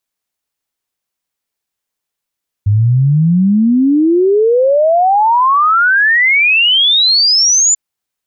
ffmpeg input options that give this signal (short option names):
-f lavfi -i "aevalsrc='0.447*clip(min(t,5.09-t)/0.01,0,1)*sin(2*PI*99*5.09/log(7200/99)*(exp(log(7200/99)*t/5.09)-1))':d=5.09:s=44100"